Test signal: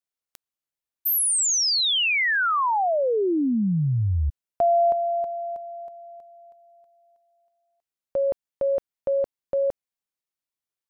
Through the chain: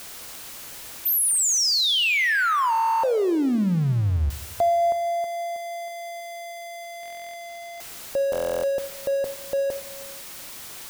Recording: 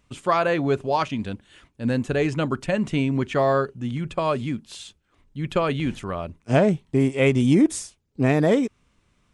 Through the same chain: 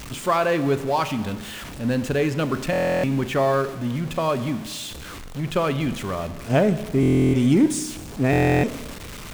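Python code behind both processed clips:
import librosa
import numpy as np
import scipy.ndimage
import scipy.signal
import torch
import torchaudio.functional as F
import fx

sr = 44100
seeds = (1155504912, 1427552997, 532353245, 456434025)

y = x + 0.5 * 10.0 ** (-30.0 / 20.0) * np.sign(x)
y = fx.rev_schroeder(y, sr, rt60_s=1.3, comb_ms=29, drr_db=12.0)
y = fx.buffer_glitch(y, sr, at_s=(2.71, 7.01, 8.31), block=1024, repeats=13)
y = y * 10.0 ** (-1.0 / 20.0)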